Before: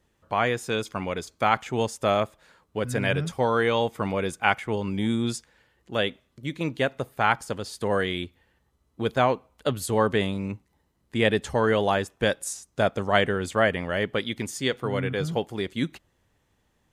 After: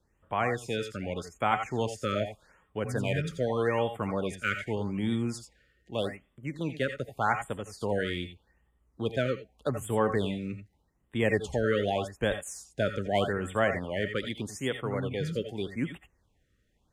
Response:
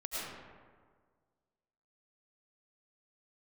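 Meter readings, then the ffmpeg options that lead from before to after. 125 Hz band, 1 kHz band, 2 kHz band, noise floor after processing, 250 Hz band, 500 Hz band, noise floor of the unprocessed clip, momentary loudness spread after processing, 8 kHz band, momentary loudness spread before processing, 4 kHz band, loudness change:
-3.0 dB, -6.5 dB, -6.0 dB, -72 dBFS, -4.0 dB, -4.5 dB, -70 dBFS, 9 LU, -7.0 dB, 9 LU, -7.5 dB, -5.0 dB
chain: -filter_complex "[0:a]lowshelf=f=120:g=3.5,acrossover=split=270|2100[s0][s1][s2];[s2]asoftclip=type=hard:threshold=0.0473[s3];[s0][s1][s3]amix=inputs=3:normalize=0,highshelf=f=10000:g=-7.5[s4];[1:a]atrim=start_sample=2205,atrim=end_sample=3969[s5];[s4][s5]afir=irnorm=-1:irlink=0,afftfilt=real='re*(1-between(b*sr/1024,820*pow(5300/820,0.5+0.5*sin(2*PI*0.83*pts/sr))/1.41,820*pow(5300/820,0.5+0.5*sin(2*PI*0.83*pts/sr))*1.41))':imag='im*(1-between(b*sr/1024,820*pow(5300/820,0.5+0.5*sin(2*PI*0.83*pts/sr))/1.41,820*pow(5300/820,0.5+0.5*sin(2*PI*0.83*pts/sr))*1.41))':win_size=1024:overlap=0.75"

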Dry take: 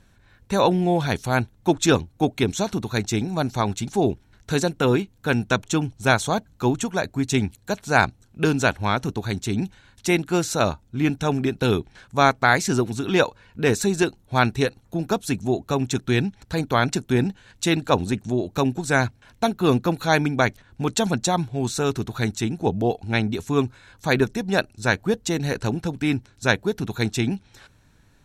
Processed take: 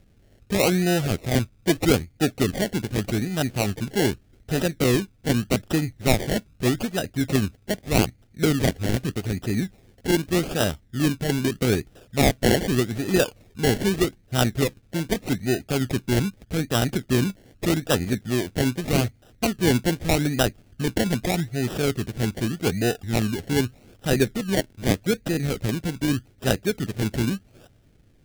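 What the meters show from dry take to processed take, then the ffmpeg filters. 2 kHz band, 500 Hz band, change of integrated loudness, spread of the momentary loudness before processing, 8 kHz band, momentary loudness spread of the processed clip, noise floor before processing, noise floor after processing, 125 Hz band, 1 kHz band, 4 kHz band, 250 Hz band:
-5.0 dB, -1.5 dB, -1.0 dB, 6 LU, 0.0 dB, 6 LU, -57 dBFS, -57 dBFS, +0.5 dB, -7.5 dB, +0.5 dB, 0.0 dB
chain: -af "acrusher=samples=28:mix=1:aa=0.000001:lfo=1:lforange=16.8:lforate=0.82,equalizer=f=1000:w=2.2:g=-13"

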